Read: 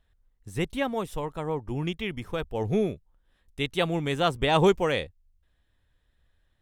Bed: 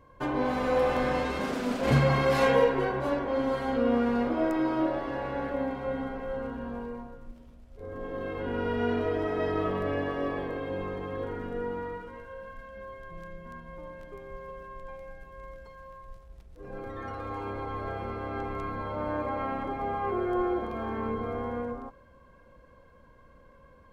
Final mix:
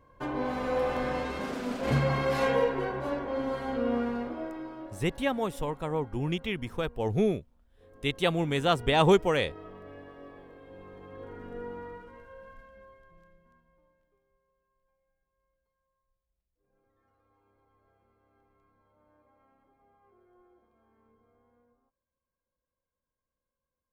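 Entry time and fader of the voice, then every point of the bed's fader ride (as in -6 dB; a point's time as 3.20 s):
4.45 s, -0.5 dB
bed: 4.00 s -3.5 dB
4.92 s -17 dB
10.59 s -17 dB
11.54 s -6 dB
12.55 s -6 dB
14.48 s -35 dB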